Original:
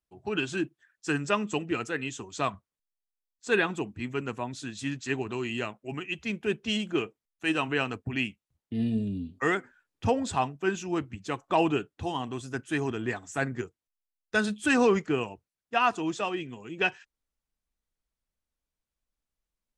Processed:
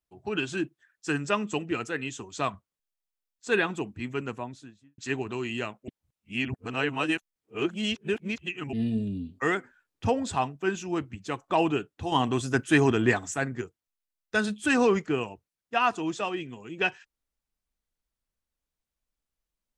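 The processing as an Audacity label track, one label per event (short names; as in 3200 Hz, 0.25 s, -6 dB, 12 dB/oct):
4.210000	4.980000	studio fade out
5.880000	8.730000	reverse
12.120000	13.340000	gain +8.5 dB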